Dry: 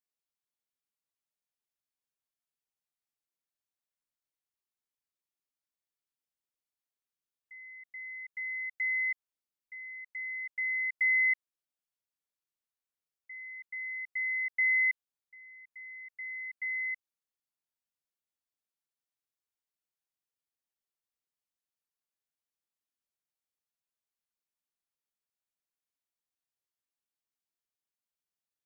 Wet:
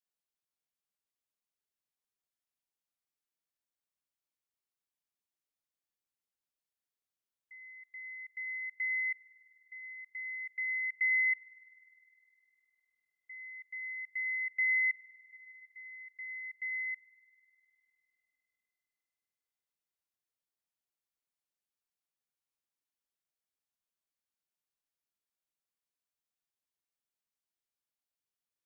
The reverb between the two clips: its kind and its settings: spring tank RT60 3.3 s, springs 45 ms, chirp 30 ms, DRR 12.5 dB; trim -2.5 dB

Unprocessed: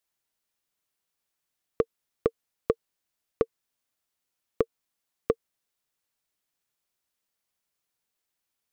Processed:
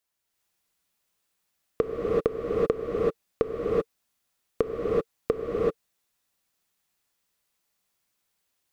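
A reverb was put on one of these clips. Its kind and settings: gated-style reverb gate 410 ms rising, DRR -5 dB

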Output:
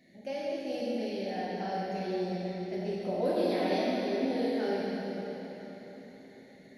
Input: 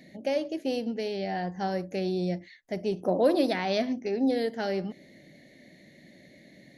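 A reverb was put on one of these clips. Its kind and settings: plate-style reverb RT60 4.4 s, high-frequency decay 0.8×, DRR -7.5 dB; trim -11.5 dB

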